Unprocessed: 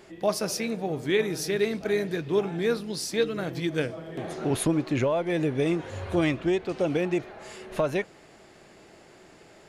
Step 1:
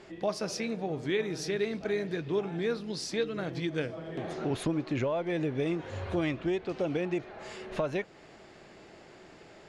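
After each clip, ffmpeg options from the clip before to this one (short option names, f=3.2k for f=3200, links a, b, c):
-af "lowpass=6k,acompressor=threshold=-36dB:ratio=1.5"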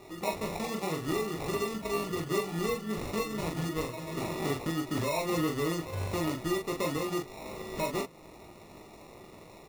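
-filter_complex "[0:a]alimiter=limit=-24dB:level=0:latency=1:release=314,acrusher=samples=28:mix=1:aa=0.000001,asplit=2[a][b];[b]aecho=0:1:19|42:0.531|0.596[c];[a][c]amix=inputs=2:normalize=0"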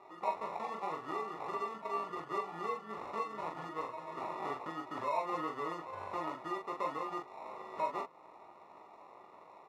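-af "bandpass=f=1k:t=q:w=2.1:csg=0,volume=2.5dB"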